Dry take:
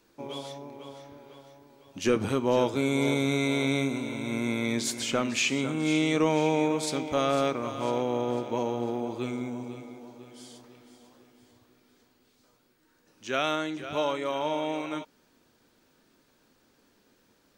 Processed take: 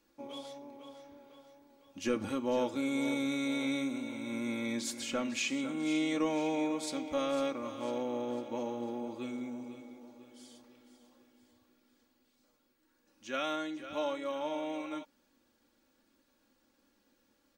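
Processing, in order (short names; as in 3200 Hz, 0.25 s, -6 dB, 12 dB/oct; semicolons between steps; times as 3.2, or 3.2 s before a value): comb 3.6 ms, depth 67%; gain -9 dB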